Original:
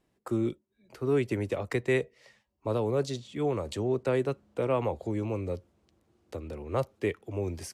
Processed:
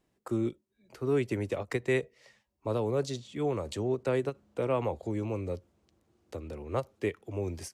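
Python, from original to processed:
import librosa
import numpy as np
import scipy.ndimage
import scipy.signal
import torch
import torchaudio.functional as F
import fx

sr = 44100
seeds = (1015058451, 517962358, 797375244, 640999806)

y = fx.peak_eq(x, sr, hz=6600.0, db=2.0, octaves=0.77)
y = fx.end_taper(y, sr, db_per_s=440.0)
y = F.gain(torch.from_numpy(y), -1.5).numpy()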